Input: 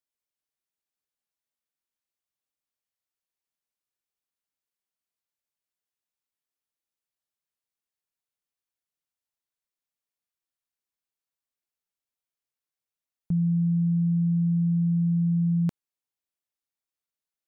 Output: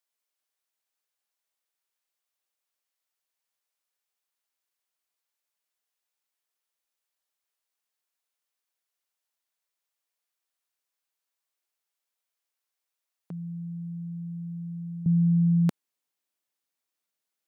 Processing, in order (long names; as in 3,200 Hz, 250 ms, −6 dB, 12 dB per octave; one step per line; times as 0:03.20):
high-pass filter 480 Hz 12 dB per octave, from 0:15.06 180 Hz
level +5.5 dB